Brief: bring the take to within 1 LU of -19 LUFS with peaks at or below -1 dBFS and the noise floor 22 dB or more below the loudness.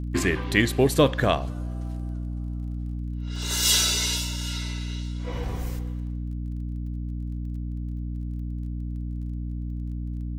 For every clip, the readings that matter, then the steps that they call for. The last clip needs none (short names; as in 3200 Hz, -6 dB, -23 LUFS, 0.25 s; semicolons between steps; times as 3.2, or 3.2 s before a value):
ticks 19/s; hum 60 Hz; harmonics up to 300 Hz; hum level -28 dBFS; loudness -27.5 LUFS; peak -5.5 dBFS; loudness target -19.0 LUFS
-> de-click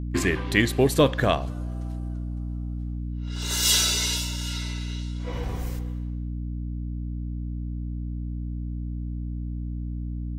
ticks 0/s; hum 60 Hz; harmonics up to 300 Hz; hum level -28 dBFS
-> notches 60/120/180/240/300 Hz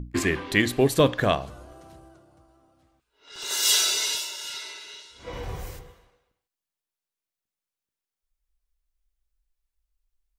hum none; loudness -23.5 LUFS; peak -6.0 dBFS; loudness target -19.0 LUFS
-> gain +4.5 dB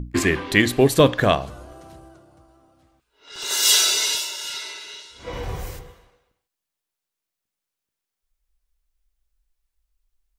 loudness -19.0 LUFS; peak -1.5 dBFS; noise floor -85 dBFS